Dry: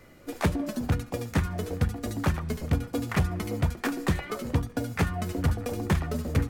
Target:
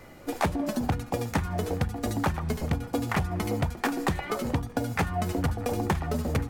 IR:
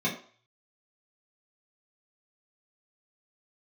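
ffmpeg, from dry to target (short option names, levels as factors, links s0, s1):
-af "acompressor=threshold=0.0398:ratio=6,equalizer=f=820:w=2.8:g=7,volume=1.58"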